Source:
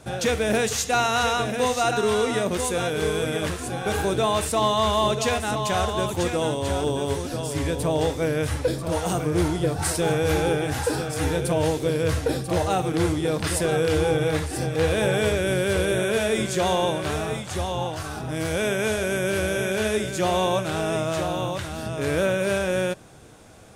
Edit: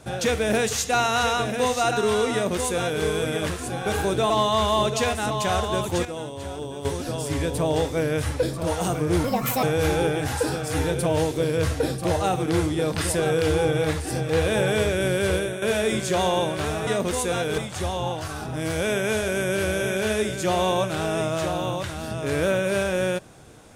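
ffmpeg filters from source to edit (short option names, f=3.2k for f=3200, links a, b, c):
-filter_complex "[0:a]asplit=9[a][b][c][d][e][f][g][h][i];[a]atrim=end=4.302[j];[b]atrim=start=4.548:end=6.302[k];[c]atrim=start=6.298:end=7.102,asetpts=PTS-STARTPTS,volume=-8.5dB[l];[d]atrim=start=7.098:end=9.494[m];[e]atrim=start=9.49:end=10.09,asetpts=PTS-STARTPTS,asetrate=67914,aresample=44100[n];[f]atrim=start=10.086:end=16.08,asetpts=PTS-STARTPTS,afade=t=out:st=5.734:d=0.26:c=qua:silence=0.354813[o];[g]atrim=start=16.08:end=17.332,asetpts=PTS-STARTPTS,afade=t=in:d=0.004:c=hsin:silence=0.354813[p];[h]atrim=start=2.328:end=3.042[q];[i]atrim=start=17.328[r];[j][k]acrossfade=d=0.004:c1=hsin:c2=hsin[s];[s][l]acrossfade=d=0.004:c1=hsin:c2=hsin[t];[t][m]acrossfade=d=0.004:c1=hsin:c2=hsin[u];[u][n]acrossfade=d=0.004:c1=hsin:c2=hsin[v];[o][p]concat=n=2:v=0:a=1[w];[v][w]acrossfade=d=0.004:c1=hsin:c2=hsin[x];[x][q]acrossfade=d=0.004:c1=hsin:c2=hsin[y];[y][r]acrossfade=d=0.004:c1=hsin:c2=hsin"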